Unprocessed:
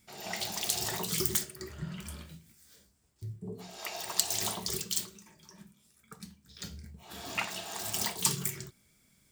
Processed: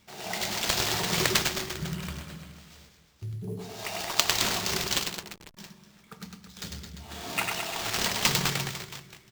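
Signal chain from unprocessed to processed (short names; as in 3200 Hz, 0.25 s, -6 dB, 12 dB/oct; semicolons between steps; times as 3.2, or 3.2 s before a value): reverse bouncing-ball echo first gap 0.1 s, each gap 1.15×, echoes 5; 4.99–5.57 backlash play -35.5 dBFS; sample-rate reducer 11000 Hz, jitter 20%; gain +3.5 dB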